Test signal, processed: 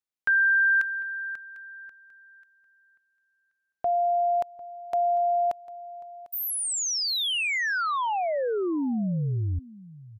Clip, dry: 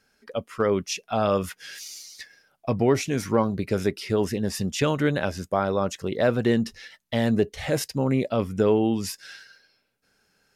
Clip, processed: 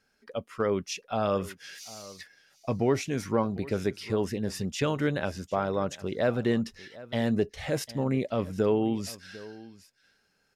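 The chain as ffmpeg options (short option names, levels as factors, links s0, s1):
-af "highshelf=f=9200:g=-5,aecho=1:1:749:0.112,volume=0.596"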